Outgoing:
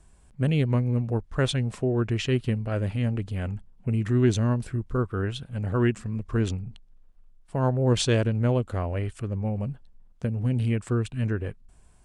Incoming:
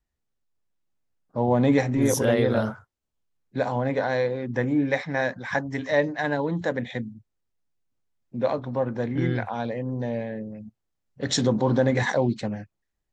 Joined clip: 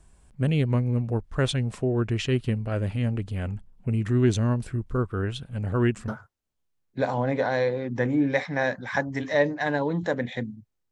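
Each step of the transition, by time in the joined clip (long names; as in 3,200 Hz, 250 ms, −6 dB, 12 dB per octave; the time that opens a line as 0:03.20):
outgoing
0:06.08: continue with incoming from 0:02.66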